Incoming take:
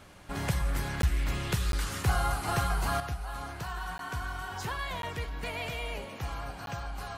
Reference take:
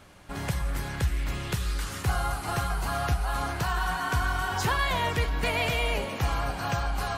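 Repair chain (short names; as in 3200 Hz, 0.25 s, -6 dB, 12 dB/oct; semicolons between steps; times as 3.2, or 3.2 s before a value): interpolate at 1.02/1.72/3.98/5.02/6.66, 12 ms; gain 0 dB, from 3 s +9 dB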